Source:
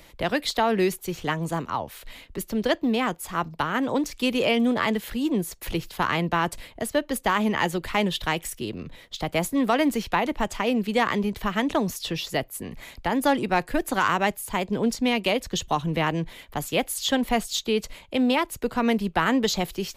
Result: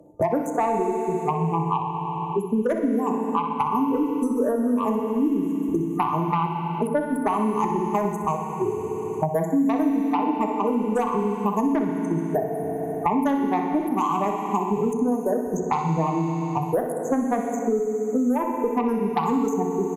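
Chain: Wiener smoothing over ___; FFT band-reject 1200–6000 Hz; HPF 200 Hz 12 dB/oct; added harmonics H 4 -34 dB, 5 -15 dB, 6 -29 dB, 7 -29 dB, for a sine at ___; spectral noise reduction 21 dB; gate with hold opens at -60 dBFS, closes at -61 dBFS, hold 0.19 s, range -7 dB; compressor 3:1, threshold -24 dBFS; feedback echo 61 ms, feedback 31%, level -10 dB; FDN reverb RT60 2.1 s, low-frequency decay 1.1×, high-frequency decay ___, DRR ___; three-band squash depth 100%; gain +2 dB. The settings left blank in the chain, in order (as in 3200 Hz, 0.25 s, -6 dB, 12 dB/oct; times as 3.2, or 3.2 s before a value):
41 samples, -11.5 dBFS, 0.9×, 3 dB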